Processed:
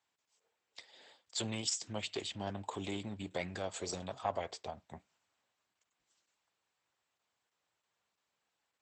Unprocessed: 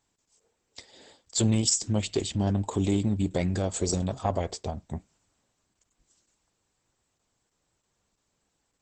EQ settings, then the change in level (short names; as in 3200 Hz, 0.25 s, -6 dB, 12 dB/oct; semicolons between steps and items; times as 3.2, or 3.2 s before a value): HPF 90 Hz; three-band isolator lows -12 dB, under 550 Hz, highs -19 dB, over 3600 Hz; high shelf 3500 Hz +11 dB; -5.0 dB